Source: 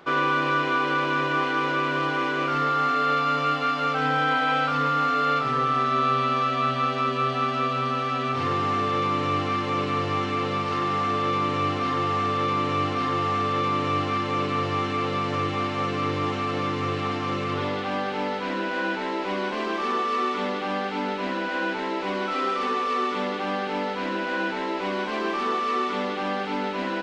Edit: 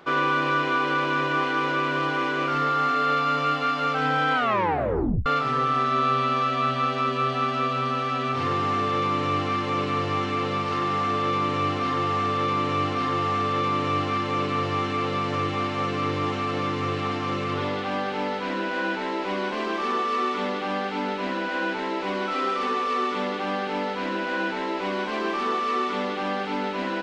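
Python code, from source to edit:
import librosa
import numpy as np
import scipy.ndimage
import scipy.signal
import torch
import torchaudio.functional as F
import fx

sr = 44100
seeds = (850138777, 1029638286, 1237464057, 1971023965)

y = fx.edit(x, sr, fx.tape_stop(start_s=4.35, length_s=0.91), tone=tone)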